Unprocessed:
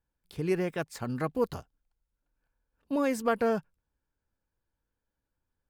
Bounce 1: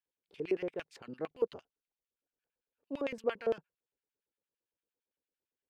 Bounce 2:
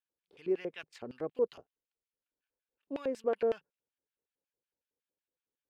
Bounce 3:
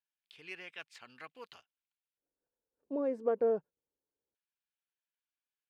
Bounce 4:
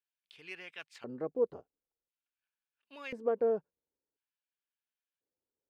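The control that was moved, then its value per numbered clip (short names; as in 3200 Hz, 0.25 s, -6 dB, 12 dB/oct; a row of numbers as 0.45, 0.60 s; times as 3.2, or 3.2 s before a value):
LFO band-pass, rate: 8.8, 5.4, 0.23, 0.48 Hz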